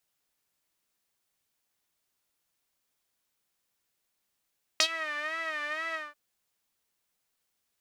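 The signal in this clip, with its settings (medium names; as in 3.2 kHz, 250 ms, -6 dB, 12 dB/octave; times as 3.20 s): synth patch with vibrato D#5, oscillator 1 saw, detune 12 cents, sub -10 dB, filter bandpass, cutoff 1.4 kHz, filter envelope 2 oct, filter decay 0.12 s, filter sustain 20%, attack 3 ms, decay 0.07 s, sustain -18 dB, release 0.20 s, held 1.14 s, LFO 2.1 Hz, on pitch 94 cents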